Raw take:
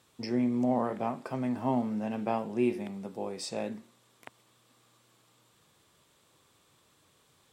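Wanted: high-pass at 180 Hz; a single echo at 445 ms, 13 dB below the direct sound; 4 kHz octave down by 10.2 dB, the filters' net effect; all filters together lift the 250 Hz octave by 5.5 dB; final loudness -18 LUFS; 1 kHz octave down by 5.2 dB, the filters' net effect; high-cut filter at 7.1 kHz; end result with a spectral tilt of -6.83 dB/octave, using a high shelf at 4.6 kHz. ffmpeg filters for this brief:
-af "highpass=180,lowpass=7100,equalizer=f=250:t=o:g=7.5,equalizer=f=1000:t=o:g=-7.5,equalizer=f=4000:t=o:g=-8.5,highshelf=f=4600:g=-6.5,aecho=1:1:445:0.224,volume=3.16"

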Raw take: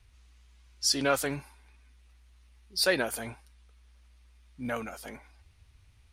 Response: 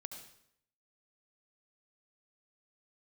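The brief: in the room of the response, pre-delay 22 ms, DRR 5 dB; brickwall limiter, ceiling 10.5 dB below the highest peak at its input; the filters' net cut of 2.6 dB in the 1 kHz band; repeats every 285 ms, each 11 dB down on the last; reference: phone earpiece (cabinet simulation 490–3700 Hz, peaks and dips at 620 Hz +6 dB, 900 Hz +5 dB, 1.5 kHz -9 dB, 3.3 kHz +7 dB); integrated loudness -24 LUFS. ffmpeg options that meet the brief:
-filter_complex "[0:a]equalizer=f=1000:t=o:g=-5,alimiter=limit=0.0631:level=0:latency=1,aecho=1:1:285|570|855:0.282|0.0789|0.0221,asplit=2[s0][s1];[1:a]atrim=start_sample=2205,adelay=22[s2];[s1][s2]afir=irnorm=-1:irlink=0,volume=0.841[s3];[s0][s3]amix=inputs=2:normalize=0,highpass=490,equalizer=f=620:t=q:w=4:g=6,equalizer=f=900:t=q:w=4:g=5,equalizer=f=1500:t=q:w=4:g=-9,equalizer=f=3300:t=q:w=4:g=7,lowpass=f=3700:w=0.5412,lowpass=f=3700:w=1.3066,volume=5.62"

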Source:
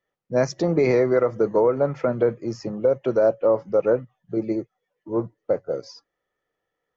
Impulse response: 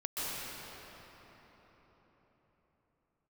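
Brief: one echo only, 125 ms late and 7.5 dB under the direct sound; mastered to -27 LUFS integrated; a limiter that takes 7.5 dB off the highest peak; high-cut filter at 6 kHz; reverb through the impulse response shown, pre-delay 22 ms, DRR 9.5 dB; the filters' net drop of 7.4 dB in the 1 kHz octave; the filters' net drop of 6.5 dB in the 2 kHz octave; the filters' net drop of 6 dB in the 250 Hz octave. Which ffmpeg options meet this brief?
-filter_complex "[0:a]lowpass=6000,equalizer=f=250:t=o:g=-8.5,equalizer=f=1000:t=o:g=-8.5,equalizer=f=2000:t=o:g=-5,alimiter=limit=0.1:level=0:latency=1,aecho=1:1:125:0.422,asplit=2[s0][s1];[1:a]atrim=start_sample=2205,adelay=22[s2];[s1][s2]afir=irnorm=-1:irlink=0,volume=0.168[s3];[s0][s3]amix=inputs=2:normalize=0,volume=1.41"

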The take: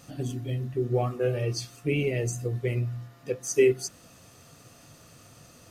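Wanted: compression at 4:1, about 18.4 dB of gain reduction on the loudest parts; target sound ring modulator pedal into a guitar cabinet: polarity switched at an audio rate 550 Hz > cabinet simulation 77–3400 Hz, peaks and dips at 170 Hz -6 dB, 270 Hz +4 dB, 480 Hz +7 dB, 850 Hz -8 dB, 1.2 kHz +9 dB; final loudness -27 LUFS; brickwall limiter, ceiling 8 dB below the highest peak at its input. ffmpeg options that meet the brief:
-af "acompressor=threshold=0.0112:ratio=4,alimiter=level_in=3.55:limit=0.0631:level=0:latency=1,volume=0.282,aeval=exprs='val(0)*sgn(sin(2*PI*550*n/s))':c=same,highpass=77,equalizer=f=170:t=q:w=4:g=-6,equalizer=f=270:t=q:w=4:g=4,equalizer=f=480:t=q:w=4:g=7,equalizer=f=850:t=q:w=4:g=-8,equalizer=f=1200:t=q:w=4:g=9,lowpass=f=3400:w=0.5412,lowpass=f=3400:w=1.3066,volume=6.68"

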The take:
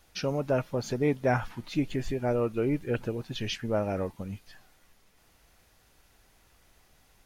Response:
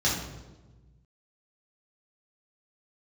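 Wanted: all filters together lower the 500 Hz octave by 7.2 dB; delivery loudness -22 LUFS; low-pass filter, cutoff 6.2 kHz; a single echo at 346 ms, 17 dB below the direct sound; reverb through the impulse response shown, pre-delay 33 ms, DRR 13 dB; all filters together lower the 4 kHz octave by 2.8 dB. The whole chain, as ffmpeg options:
-filter_complex "[0:a]lowpass=6200,equalizer=f=500:t=o:g=-9,equalizer=f=4000:t=o:g=-3,aecho=1:1:346:0.141,asplit=2[s0][s1];[1:a]atrim=start_sample=2205,adelay=33[s2];[s1][s2]afir=irnorm=-1:irlink=0,volume=0.0562[s3];[s0][s3]amix=inputs=2:normalize=0,volume=3.76"

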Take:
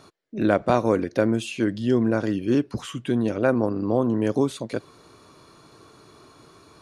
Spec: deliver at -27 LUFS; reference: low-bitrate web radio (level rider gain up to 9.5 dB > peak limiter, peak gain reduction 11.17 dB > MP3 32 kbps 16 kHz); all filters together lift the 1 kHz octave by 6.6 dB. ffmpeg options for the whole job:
-af "equalizer=f=1000:t=o:g=9,dynaudnorm=m=2.99,alimiter=limit=0.251:level=0:latency=1,volume=0.841" -ar 16000 -c:a libmp3lame -b:a 32k

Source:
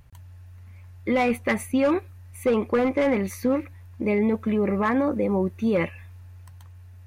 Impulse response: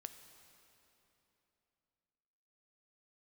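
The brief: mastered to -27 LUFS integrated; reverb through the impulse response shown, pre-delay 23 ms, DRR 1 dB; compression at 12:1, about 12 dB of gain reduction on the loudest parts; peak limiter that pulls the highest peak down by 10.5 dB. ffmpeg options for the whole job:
-filter_complex "[0:a]acompressor=threshold=0.0316:ratio=12,alimiter=level_in=2:limit=0.0631:level=0:latency=1,volume=0.501,asplit=2[s0][s1];[1:a]atrim=start_sample=2205,adelay=23[s2];[s1][s2]afir=irnorm=-1:irlink=0,volume=1.58[s3];[s0][s3]amix=inputs=2:normalize=0,volume=2.99"

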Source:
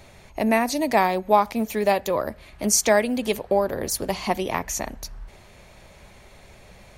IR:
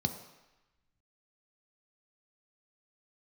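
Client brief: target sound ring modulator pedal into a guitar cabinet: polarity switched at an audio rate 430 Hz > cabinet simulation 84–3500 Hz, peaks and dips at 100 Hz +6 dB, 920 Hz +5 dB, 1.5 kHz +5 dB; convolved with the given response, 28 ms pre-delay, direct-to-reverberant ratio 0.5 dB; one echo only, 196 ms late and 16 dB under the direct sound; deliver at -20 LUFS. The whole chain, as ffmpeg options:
-filter_complex "[0:a]aecho=1:1:196:0.158,asplit=2[s0][s1];[1:a]atrim=start_sample=2205,adelay=28[s2];[s1][s2]afir=irnorm=-1:irlink=0,volume=0.596[s3];[s0][s3]amix=inputs=2:normalize=0,aeval=exprs='val(0)*sgn(sin(2*PI*430*n/s))':c=same,highpass=84,equalizer=f=100:t=q:w=4:g=6,equalizer=f=920:t=q:w=4:g=5,equalizer=f=1500:t=q:w=4:g=5,lowpass=f=3500:w=0.5412,lowpass=f=3500:w=1.3066,volume=0.631"

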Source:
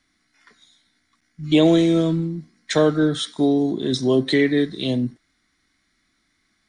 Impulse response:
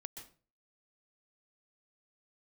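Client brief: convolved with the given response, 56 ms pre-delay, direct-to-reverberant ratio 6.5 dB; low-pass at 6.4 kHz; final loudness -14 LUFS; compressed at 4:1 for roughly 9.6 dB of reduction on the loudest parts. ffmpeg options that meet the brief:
-filter_complex "[0:a]lowpass=6400,acompressor=threshold=0.0708:ratio=4,asplit=2[s0][s1];[1:a]atrim=start_sample=2205,adelay=56[s2];[s1][s2]afir=irnorm=-1:irlink=0,volume=0.794[s3];[s0][s3]amix=inputs=2:normalize=0,volume=3.98"

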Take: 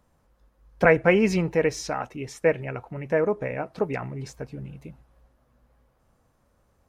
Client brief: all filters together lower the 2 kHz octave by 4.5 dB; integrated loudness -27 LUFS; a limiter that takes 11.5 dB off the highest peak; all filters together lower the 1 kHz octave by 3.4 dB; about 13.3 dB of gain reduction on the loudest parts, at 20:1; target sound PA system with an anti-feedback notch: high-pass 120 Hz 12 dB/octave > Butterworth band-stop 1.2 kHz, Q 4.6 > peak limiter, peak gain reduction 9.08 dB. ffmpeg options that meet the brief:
-af "equalizer=f=1000:t=o:g=-3.5,equalizer=f=2000:t=o:g=-4.5,acompressor=threshold=0.0398:ratio=20,alimiter=level_in=2.11:limit=0.0631:level=0:latency=1,volume=0.473,highpass=120,asuperstop=centerf=1200:order=8:qfactor=4.6,volume=8.41,alimiter=limit=0.133:level=0:latency=1"

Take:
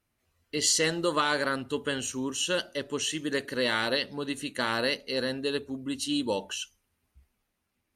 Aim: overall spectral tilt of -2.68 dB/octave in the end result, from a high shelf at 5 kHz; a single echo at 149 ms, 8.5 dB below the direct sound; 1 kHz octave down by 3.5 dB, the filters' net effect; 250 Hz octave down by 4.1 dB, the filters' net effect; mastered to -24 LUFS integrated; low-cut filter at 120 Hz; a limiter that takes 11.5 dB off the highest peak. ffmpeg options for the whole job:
-af "highpass=120,equalizer=f=250:t=o:g=-4.5,equalizer=f=1000:t=o:g=-4,highshelf=f=5000:g=-5.5,alimiter=level_in=1.33:limit=0.0631:level=0:latency=1,volume=0.75,aecho=1:1:149:0.376,volume=4.22"

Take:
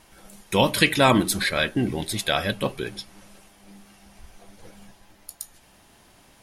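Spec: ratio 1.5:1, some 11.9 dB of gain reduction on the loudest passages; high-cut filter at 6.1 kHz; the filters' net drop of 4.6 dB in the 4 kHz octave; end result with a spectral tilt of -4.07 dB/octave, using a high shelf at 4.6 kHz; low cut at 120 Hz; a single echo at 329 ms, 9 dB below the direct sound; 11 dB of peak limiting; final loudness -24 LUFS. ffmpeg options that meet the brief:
-af "highpass=120,lowpass=6100,equalizer=f=4000:t=o:g=-6.5,highshelf=f=4600:g=3,acompressor=threshold=0.00398:ratio=1.5,alimiter=level_in=1.41:limit=0.0631:level=0:latency=1,volume=0.708,aecho=1:1:329:0.355,volume=5.96"

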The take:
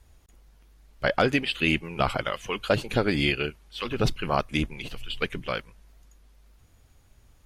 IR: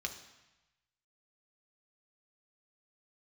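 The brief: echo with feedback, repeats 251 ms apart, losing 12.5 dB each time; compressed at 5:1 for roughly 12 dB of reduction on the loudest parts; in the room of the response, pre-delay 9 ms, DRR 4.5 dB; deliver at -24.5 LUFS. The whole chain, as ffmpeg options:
-filter_complex "[0:a]acompressor=threshold=0.0251:ratio=5,aecho=1:1:251|502|753:0.237|0.0569|0.0137,asplit=2[s0][s1];[1:a]atrim=start_sample=2205,adelay=9[s2];[s1][s2]afir=irnorm=-1:irlink=0,volume=0.531[s3];[s0][s3]amix=inputs=2:normalize=0,volume=3.35"

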